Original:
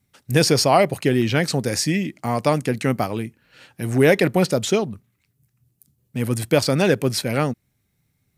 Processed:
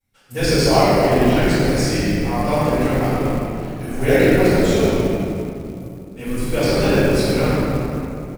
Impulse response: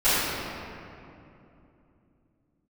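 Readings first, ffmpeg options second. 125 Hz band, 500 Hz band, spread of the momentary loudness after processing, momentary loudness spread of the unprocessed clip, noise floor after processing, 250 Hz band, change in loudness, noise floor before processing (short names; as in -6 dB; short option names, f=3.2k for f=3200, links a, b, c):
+3.0 dB, +3.5 dB, 14 LU, 11 LU, -36 dBFS, +4.5 dB, +2.5 dB, -71 dBFS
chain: -filter_complex "[0:a]asplit=7[a][b][c][d][e][f][g];[b]adelay=97,afreqshift=-100,volume=-7.5dB[h];[c]adelay=194,afreqshift=-200,volume=-13.3dB[i];[d]adelay=291,afreqshift=-300,volume=-19.2dB[j];[e]adelay=388,afreqshift=-400,volume=-25dB[k];[f]adelay=485,afreqshift=-500,volume=-30.9dB[l];[g]adelay=582,afreqshift=-600,volume=-36.7dB[m];[a][h][i][j][k][l][m]amix=inputs=7:normalize=0[n];[1:a]atrim=start_sample=2205[o];[n][o]afir=irnorm=-1:irlink=0,acrusher=bits=6:mode=log:mix=0:aa=0.000001,volume=-17.5dB"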